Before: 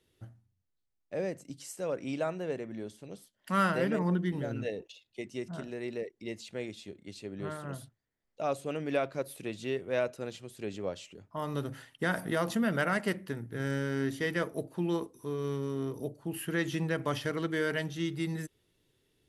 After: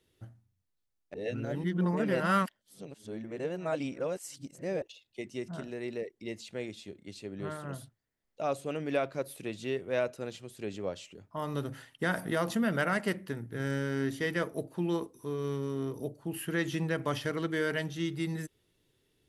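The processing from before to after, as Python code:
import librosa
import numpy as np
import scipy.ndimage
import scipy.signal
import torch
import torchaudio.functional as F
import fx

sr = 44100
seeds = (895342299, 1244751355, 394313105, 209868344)

y = fx.edit(x, sr, fx.reverse_span(start_s=1.14, length_s=3.68), tone=tone)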